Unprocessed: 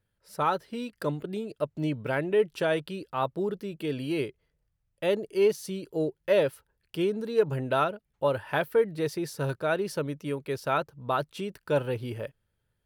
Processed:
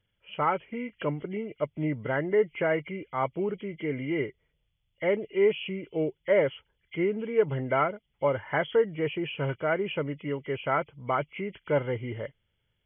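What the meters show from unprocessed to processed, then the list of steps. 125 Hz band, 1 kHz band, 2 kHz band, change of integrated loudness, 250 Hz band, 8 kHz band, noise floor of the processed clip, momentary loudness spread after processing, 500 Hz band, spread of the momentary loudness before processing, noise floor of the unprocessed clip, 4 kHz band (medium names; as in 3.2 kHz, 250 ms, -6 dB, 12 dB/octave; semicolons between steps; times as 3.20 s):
0.0 dB, 0.0 dB, +2.0 dB, 0.0 dB, 0.0 dB, under -30 dB, -77 dBFS, 9 LU, 0.0 dB, 9 LU, -78 dBFS, -1.5 dB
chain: knee-point frequency compression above 1.9 kHz 4:1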